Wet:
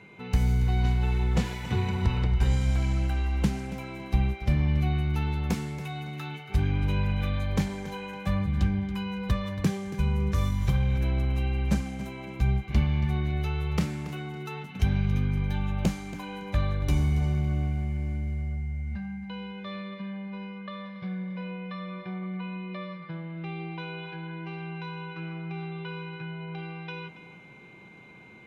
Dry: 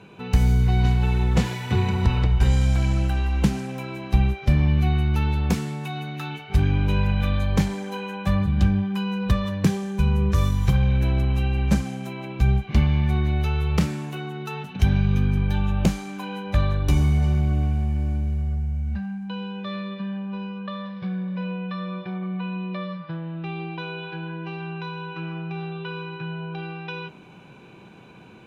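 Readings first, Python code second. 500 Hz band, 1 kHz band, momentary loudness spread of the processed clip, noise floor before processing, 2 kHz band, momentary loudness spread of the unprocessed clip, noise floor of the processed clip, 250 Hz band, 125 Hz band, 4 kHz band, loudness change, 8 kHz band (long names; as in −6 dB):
−5.5 dB, −5.5 dB, 12 LU, −46 dBFS, −4.5 dB, 12 LU, −48 dBFS, −5.5 dB, −5.5 dB, −5.5 dB, −5.5 dB, can't be measured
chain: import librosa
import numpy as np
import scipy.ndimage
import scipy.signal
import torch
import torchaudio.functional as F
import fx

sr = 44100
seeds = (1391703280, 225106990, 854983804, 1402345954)

y = x + 10.0 ** (-47.0 / 20.0) * np.sin(2.0 * np.pi * 2100.0 * np.arange(len(x)) / sr)
y = fx.echo_feedback(y, sr, ms=279, feedback_pct=26, wet_db=-14.5)
y = y * librosa.db_to_amplitude(-5.5)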